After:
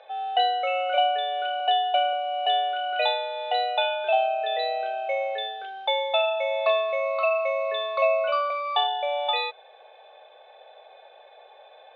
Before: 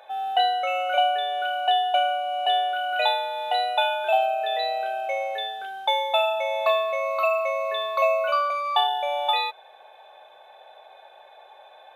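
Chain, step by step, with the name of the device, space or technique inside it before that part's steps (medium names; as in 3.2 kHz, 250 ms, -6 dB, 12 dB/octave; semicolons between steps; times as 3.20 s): 1.60–2.13 s: high-pass 240 Hz; kitchen radio (cabinet simulation 220–4200 Hz, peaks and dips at 290 Hz -10 dB, 470 Hz +7 dB, 950 Hz -7 dB, 1.5 kHz -4 dB)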